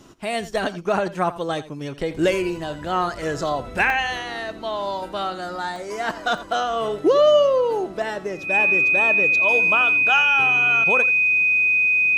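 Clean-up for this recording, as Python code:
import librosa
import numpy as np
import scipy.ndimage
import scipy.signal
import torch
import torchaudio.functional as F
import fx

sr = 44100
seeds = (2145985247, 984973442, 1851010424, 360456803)

y = fx.notch(x, sr, hz=2500.0, q=30.0)
y = fx.fix_interpolate(y, sr, at_s=(3.9, 5.76, 6.38), length_ms=1.1)
y = fx.fix_echo_inverse(y, sr, delay_ms=85, level_db=-16.0)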